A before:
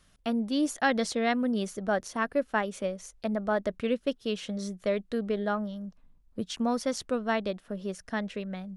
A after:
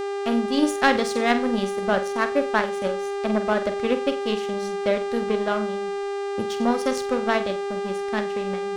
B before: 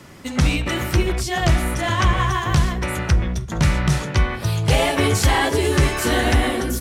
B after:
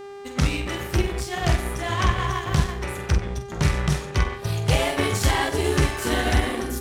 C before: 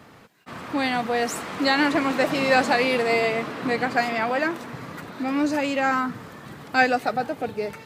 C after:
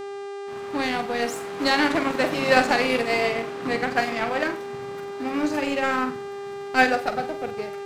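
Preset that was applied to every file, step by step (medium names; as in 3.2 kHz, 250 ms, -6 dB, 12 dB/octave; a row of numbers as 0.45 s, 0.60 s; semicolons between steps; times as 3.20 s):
flutter echo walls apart 8 m, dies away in 0.36 s; power-law waveshaper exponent 1.4; mains buzz 400 Hz, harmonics 23, -37 dBFS -9 dB/octave; normalise loudness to -24 LUFS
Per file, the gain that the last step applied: +9.0 dB, -1.5 dB, +3.0 dB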